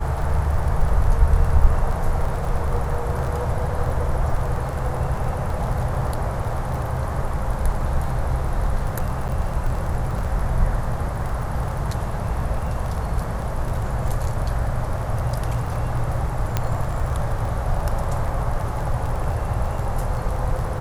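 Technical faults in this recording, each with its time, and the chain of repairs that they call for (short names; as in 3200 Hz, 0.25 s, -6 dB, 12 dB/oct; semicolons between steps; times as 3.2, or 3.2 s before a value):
crackle 22/s -27 dBFS
9.28–9.29 gap 8.6 ms
16.57 pop -7 dBFS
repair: de-click; interpolate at 9.28, 8.6 ms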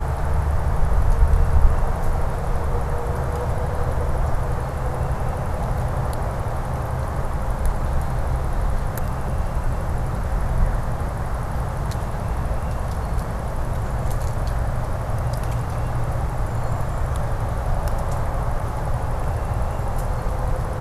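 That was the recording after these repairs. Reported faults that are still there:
none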